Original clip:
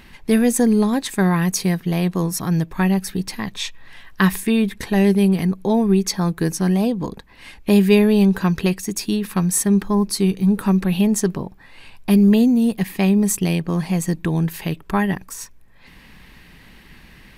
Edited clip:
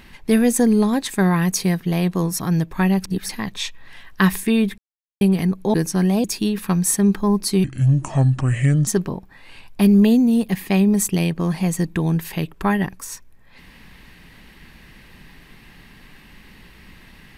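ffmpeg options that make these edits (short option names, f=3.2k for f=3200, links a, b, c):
-filter_complex "[0:a]asplit=9[a][b][c][d][e][f][g][h][i];[a]atrim=end=3.042[j];[b]atrim=start=3.038:end=3.292,asetpts=PTS-STARTPTS,areverse[k];[c]atrim=start=3.288:end=4.78,asetpts=PTS-STARTPTS,afade=t=out:st=1.488:d=0.004:c=hsin[l];[d]atrim=start=4.78:end=5.21,asetpts=PTS-STARTPTS,volume=0[m];[e]atrim=start=5.21:end=5.742,asetpts=PTS-STARTPTS,afade=t=in:d=0.004:c=hsin[n];[f]atrim=start=6.398:end=6.902[o];[g]atrim=start=8.908:end=10.314[p];[h]atrim=start=10.31:end=11.16,asetpts=PTS-STARTPTS,asetrate=30429,aresample=44100,atrim=end_sample=54326,asetpts=PTS-STARTPTS[q];[i]atrim=start=11.156[r];[j][k]acrossfade=d=0.004:c1=hsin:c2=hsin[s];[l][m][n]concat=n=3:v=0:a=1[t];[s][t]acrossfade=d=0.004:c1=hsin:c2=hsin[u];[u][o]acrossfade=d=0.004:c1=hsin:c2=hsin[v];[v][p]acrossfade=d=0.004:c1=hsin:c2=hsin[w];[w][q]acrossfade=d=0.004:c1=hsin:c2=hsin[x];[x][r]acrossfade=d=0.004:c1=hsin:c2=hsin"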